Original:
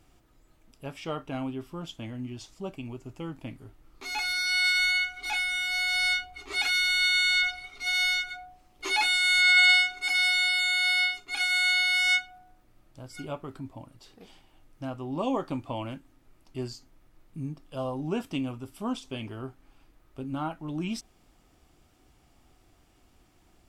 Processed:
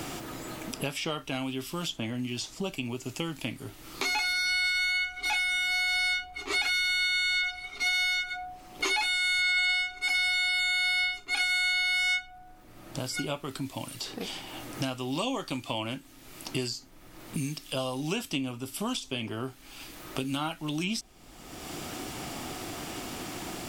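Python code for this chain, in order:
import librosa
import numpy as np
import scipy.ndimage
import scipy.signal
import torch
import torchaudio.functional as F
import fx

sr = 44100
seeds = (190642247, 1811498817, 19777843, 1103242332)

y = fx.band_squash(x, sr, depth_pct=100)
y = F.gain(torch.from_numpy(y), -1.5).numpy()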